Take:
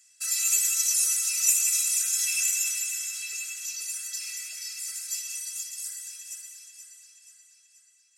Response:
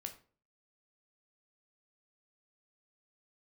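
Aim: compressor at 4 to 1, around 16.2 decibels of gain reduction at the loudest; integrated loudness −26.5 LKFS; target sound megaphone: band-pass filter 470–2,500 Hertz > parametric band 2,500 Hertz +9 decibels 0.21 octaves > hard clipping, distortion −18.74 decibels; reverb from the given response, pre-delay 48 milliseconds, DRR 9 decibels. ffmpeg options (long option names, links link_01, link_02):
-filter_complex "[0:a]acompressor=threshold=-37dB:ratio=4,asplit=2[link_01][link_02];[1:a]atrim=start_sample=2205,adelay=48[link_03];[link_02][link_03]afir=irnorm=-1:irlink=0,volume=-5.5dB[link_04];[link_01][link_04]amix=inputs=2:normalize=0,highpass=470,lowpass=2500,equalizer=frequency=2500:width_type=o:width=0.21:gain=9,asoftclip=type=hard:threshold=-39dB,volume=19dB"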